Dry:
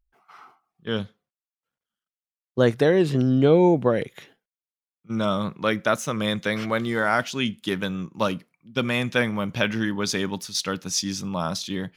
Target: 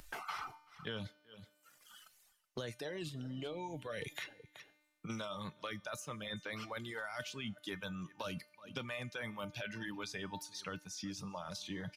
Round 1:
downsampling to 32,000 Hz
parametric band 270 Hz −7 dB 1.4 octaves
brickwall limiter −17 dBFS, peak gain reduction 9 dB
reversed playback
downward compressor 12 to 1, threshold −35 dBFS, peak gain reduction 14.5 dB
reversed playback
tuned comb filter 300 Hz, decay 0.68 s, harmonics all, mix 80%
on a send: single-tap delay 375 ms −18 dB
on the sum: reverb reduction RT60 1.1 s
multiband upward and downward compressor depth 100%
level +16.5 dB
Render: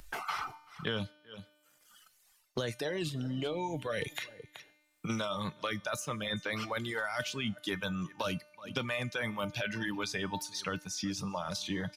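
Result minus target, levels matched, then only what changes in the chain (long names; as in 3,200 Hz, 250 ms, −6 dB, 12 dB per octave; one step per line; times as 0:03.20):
downward compressor: peak gain reduction −8 dB
change: downward compressor 12 to 1, threshold −43.5 dBFS, peak gain reduction 22.5 dB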